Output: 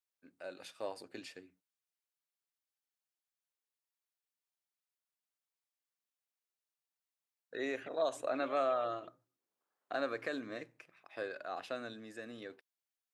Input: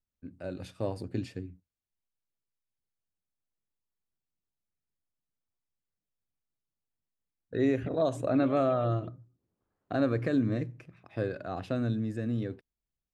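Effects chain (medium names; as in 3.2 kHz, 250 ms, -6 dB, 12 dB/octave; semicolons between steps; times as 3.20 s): Bessel high-pass 830 Hz, order 2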